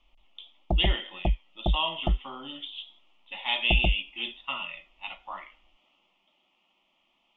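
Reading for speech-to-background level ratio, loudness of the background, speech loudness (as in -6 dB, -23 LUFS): 0.0 dB, -31.0 LUFS, -31.0 LUFS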